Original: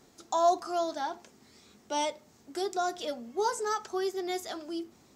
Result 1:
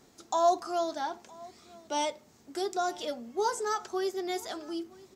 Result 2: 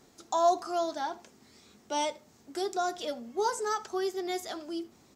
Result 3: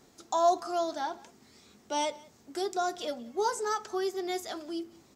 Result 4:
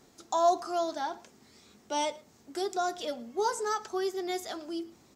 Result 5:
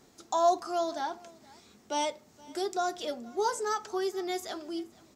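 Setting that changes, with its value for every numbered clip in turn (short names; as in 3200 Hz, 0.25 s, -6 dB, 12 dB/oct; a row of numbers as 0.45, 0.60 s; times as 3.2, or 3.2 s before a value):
echo, time: 964, 77, 182, 114, 471 ms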